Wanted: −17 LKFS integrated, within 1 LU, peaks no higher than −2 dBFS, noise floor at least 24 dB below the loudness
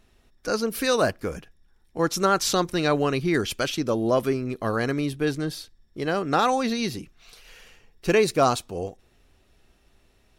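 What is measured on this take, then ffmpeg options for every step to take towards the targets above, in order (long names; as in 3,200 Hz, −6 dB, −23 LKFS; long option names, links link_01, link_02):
integrated loudness −24.5 LKFS; sample peak −8.0 dBFS; target loudness −17.0 LKFS
→ -af "volume=7.5dB,alimiter=limit=-2dB:level=0:latency=1"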